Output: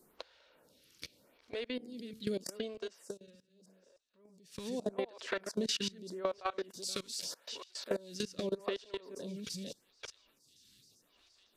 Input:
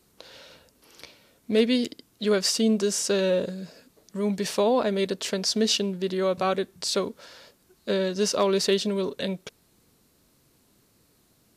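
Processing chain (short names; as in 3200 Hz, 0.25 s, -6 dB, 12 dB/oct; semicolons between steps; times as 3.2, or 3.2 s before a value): reverse delay 0.305 s, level -7 dB; 5.27–6 bell 1400 Hz +13.5 dB 1.7 oct; thin delay 0.899 s, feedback 68%, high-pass 3700 Hz, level -16 dB; level quantiser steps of 23 dB; 1.69–2.34 de-hum 73.79 Hz, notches 12; 6.7–8.23 tilt +2 dB/oct; compressor 8:1, threshold -35 dBFS, peak gain reduction 14.5 dB; 2.97–4.69 dip -20 dB, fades 0.18 s; photocell phaser 0.82 Hz; gain +5.5 dB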